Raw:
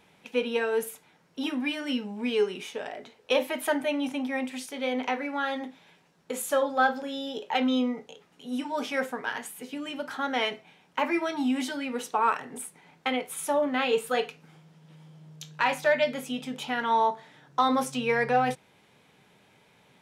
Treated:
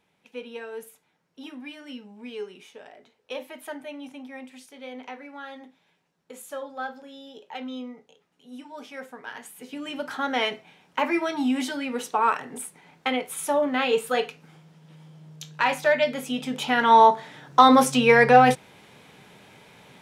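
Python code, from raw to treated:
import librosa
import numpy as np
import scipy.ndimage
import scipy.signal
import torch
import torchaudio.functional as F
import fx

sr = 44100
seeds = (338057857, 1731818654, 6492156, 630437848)

y = fx.gain(x, sr, db=fx.line((9.01, -10.0), (9.96, 2.5), (16.14, 2.5), (17.0, 9.5)))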